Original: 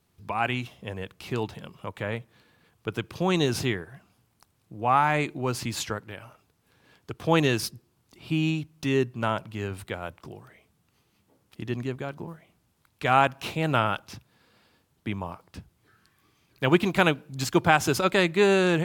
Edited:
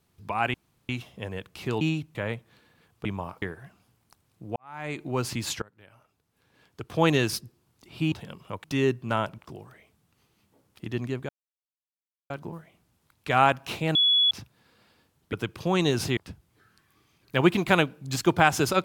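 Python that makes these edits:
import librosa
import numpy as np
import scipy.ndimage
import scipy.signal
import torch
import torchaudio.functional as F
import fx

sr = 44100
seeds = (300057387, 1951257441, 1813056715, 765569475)

y = fx.edit(x, sr, fx.insert_room_tone(at_s=0.54, length_s=0.35),
    fx.swap(start_s=1.46, length_s=0.52, other_s=8.42, other_length_s=0.34),
    fx.swap(start_s=2.88, length_s=0.84, other_s=15.08, other_length_s=0.37),
    fx.fade_in_span(start_s=4.86, length_s=0.52, curve='qua'),
    fx.fade_in_from(start_s=5.92, length_s=1.45, floor_db=-24.0),
    fx.cut(start_s=9.5, length_s=0.64),
    fx.insert_silence(at_s=12.05, length_s=1.01),
    fx.bleep(start_s=13.7, length_s=0.36, hz=3390.0, db=-17.5), tone=tone)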